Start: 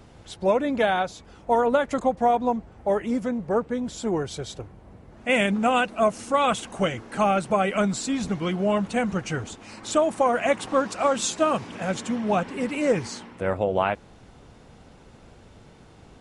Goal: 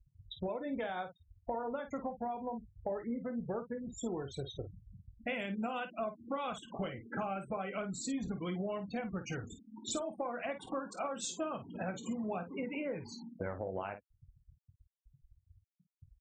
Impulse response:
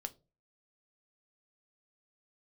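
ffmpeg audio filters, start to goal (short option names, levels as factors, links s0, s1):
-filter_complex "[0:a]afftfilt=real='re*gte(hypot(re,im),0.0355)':imag='im*gte(hypot(re,im),0.0355)':win_size=1024:overlap=0.75,acompressor=threshold=0.0224:ratio=12,asplit=2[s0][s1];[s1]aecho=0:1:22|51:0.282|0.316[s2];[s0][s2]amix=inputs=2:normalize=0,volume=0.75"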